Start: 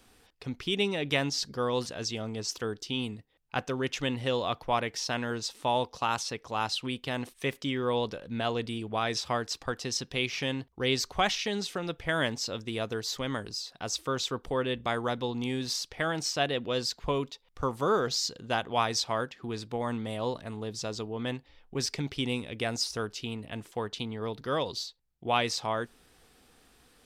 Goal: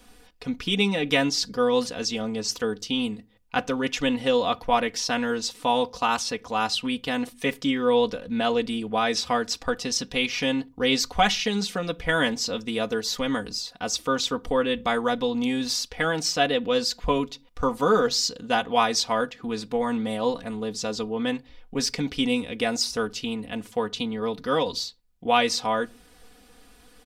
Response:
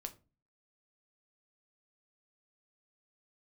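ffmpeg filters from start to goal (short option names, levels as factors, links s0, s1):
-filter_complex "[0:a]aecho=1:1:4.1:0.75,asplit=2[s0][s1];[1:a]atrim=start_sample=2205,afade=t=out:st=0.3:d=0.01,atrim=end_sample=13671,lowshelf=f=240:g=8.5[s2];[s1][s2]afir=irnorm=-1:irlink=0,volume=0.376[s3];[s0][s3]amix=inputs=2:normalize=0,volume=1.26"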